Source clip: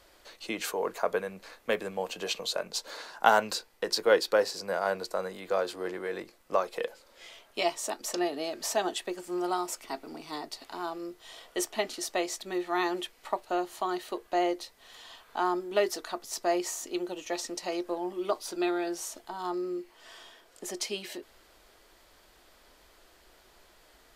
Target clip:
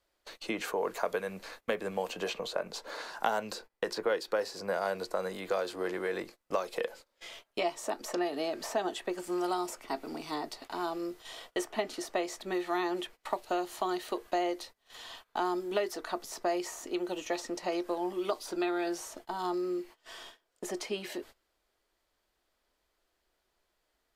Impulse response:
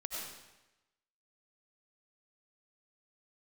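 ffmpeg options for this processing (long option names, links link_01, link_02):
-filter_complex "[0:a]acrossover=split=750|2200[link_01][link_02][link_03];[link_01]acompressor=threshold=-34dB:ratio=4[link_04];[link_02]acompressor=threshold=-40dB:ratio=4[link_05];[link_03]acompressor=threshold=-47dB:ratio=4[link_06];[link_04][link_05][link_06]amix=inputs=3:normalize=0,agate=range=-22dB:threshold=-51dB:ratio=16:detection=peak,volume=3dB"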